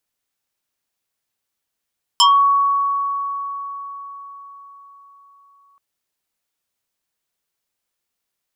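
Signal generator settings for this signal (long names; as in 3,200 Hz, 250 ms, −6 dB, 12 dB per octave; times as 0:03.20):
two-operator FM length 3.58 s, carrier 1,120 Hz, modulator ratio 1.86, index 3.5, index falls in 0.26 s exponential, decay 4.81 s, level −8 dB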